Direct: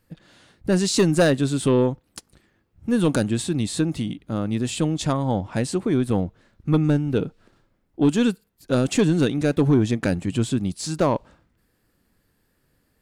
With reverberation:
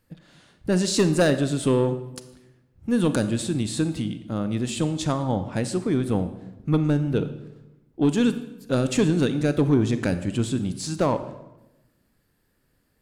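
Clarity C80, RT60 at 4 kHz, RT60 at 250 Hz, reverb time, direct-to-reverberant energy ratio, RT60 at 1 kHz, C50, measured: 14.0 dB, 0.75 s, 1.2 s, 1.0 s, 10.5 dB, 0.90 s, 12.0 dB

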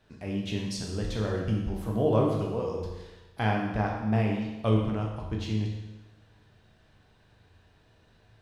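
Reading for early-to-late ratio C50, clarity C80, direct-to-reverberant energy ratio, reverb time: 3.0 dB, 4.5 dB, -1.5 dB, 1.1 s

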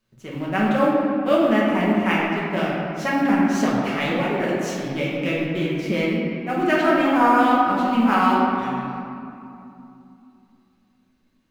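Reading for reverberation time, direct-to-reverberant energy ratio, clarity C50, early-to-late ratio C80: 2.7 s, -6.5 dB, -1.5 dB, 0.5 dB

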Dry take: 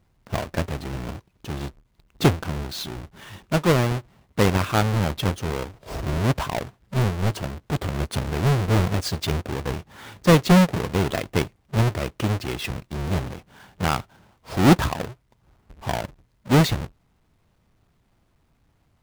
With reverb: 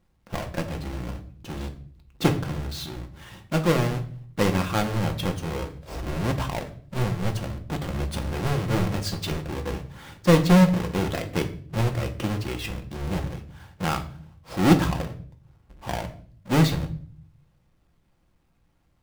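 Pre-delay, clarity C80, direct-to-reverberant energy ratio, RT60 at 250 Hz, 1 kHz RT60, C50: 4 ms, 17.0 dB, 4.5 dB, 0.85 s, 0.45 s, 12.5 dB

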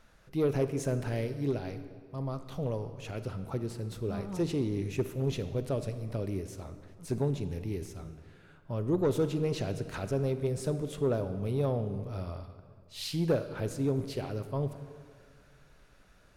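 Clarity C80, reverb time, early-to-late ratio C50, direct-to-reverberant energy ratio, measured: 12.0 dB, 2.0 s, 10.5 dB, 10.0 dB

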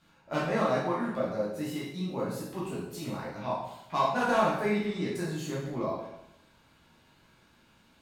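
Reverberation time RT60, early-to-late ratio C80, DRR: 0.85 s, 5.5 dB, -7.0 dB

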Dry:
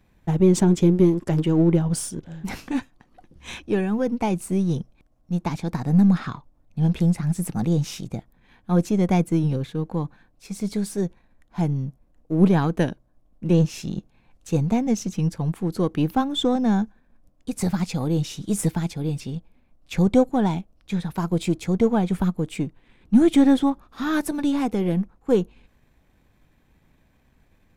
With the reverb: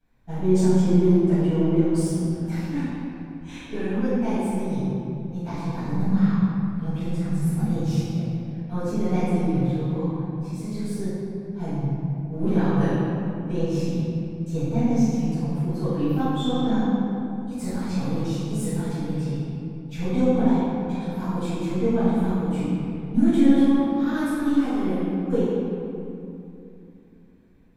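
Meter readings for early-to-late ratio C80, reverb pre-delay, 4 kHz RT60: -2.5 dB, 4 ms, 1.6 s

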